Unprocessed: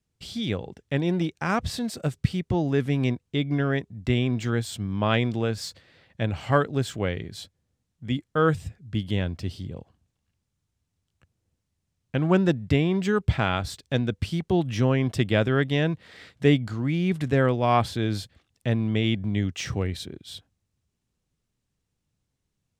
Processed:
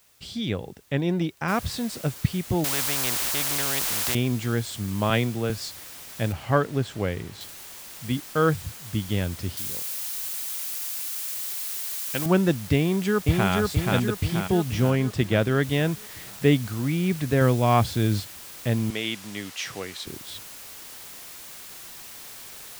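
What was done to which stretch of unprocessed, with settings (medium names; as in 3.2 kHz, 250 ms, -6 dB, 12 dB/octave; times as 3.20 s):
1.48 s: noise floor step -60 dB -42 dB
2.64–4.15 s: spectrum-flattening compressor 4:1
5.10–5.50 s: three bands expanded up and down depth 40%
6.32–7.41 s: treble shelf 4.2 kHz -9.5 dB
9.57–12.26 s: tilt EQ +3 dB/octave
12.78–13.51 s: echo throw 480 ms, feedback 55%, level -2 dB
14.90–15.63 s: treble shelf 5.3 kHz -5.5 dB
17.41–18.20 s: tone controls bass +5 dB, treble +2 dB
18.90–20.07 s: frequency weighting A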